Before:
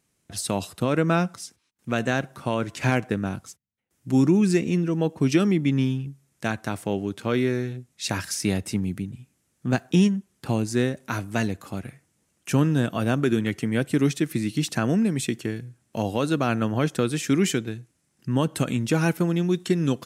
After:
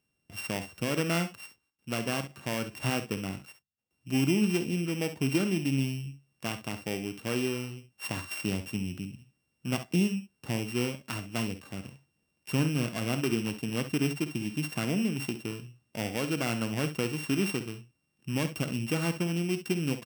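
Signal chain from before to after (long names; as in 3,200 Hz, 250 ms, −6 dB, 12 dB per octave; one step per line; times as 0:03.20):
samples sorted by size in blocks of 16 samples
ambience of single reflections 52 ms −13 dB, 66 ms −13 dB
level −7.5 dB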